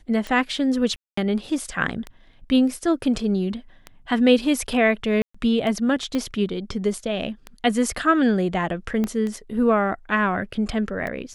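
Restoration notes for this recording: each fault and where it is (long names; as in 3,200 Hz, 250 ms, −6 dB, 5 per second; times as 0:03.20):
scratch tick 33 1/3 rpm −18 dBFS
0:00.96–0:01.17: drop-out 214 ms
0:05.22–0:05.34: drop-out 125 ms
0:06.15: click −14 dBFS
0:09.04: click −13 dBFS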